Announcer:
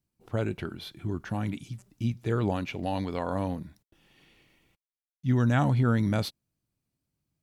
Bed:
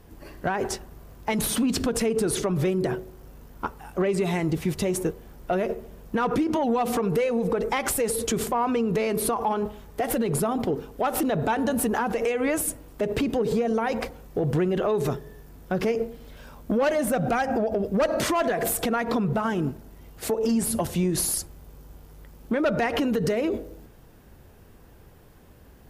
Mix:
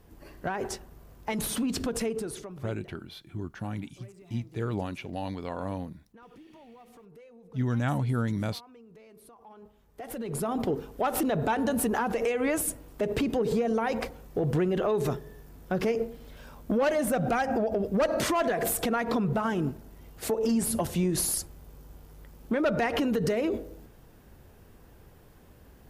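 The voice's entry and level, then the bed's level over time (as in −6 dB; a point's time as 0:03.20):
2.30 s, −4.0 dB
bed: 0:02.06 −5.5 dB
0:02.94 −28.5 dB
0:09.38 −28.5 dB
0:10.59 −2.5 dB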